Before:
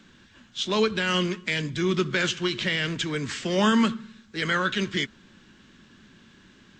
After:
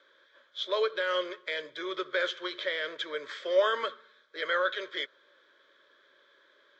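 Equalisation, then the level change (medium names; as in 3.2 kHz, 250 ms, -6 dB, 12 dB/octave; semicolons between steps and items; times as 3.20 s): resonant high-pass 580 Hz, resonance Q 4.9; resonant low-pass 3.2 kHz, resonance Q 7.9; static phaser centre 770 Hz, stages 6; -6.5 dB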